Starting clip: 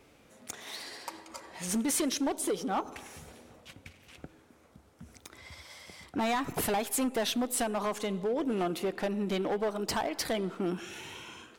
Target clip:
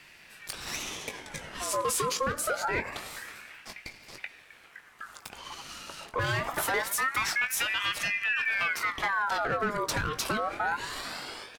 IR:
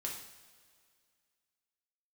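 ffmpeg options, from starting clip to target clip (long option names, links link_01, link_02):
-filter_complex "[0:a]asplit=2[link_01][link_02];[link_02]adelay=20,volume=-9.5dB[link_03];[link_01][link_03]amix=inputs=2:normalize=0,alimiter=level_in=5dB:limit=-24dB:level=0:latency=1:release=74,volume=-5dB,aeval=exprs='val(0)*sin(2*PI*1500*n/s+1500*0.5/0.25*sin(2*PI*0.25*n/s))':channel_layout=same,volume=9dB"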